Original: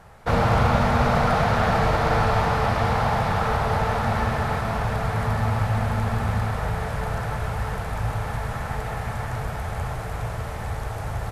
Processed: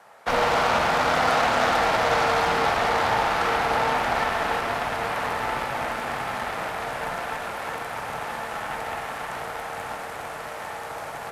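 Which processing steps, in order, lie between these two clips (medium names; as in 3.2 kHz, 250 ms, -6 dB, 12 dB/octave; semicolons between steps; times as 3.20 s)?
high-pass 440 Hz 12 dB/octave; Chebyshev shaper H 8 -17 dB, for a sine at -10.5 dBFS; frequency shift +16 Hz; on a send: reverberation, pre-delay 52 ms, DRR 5 dB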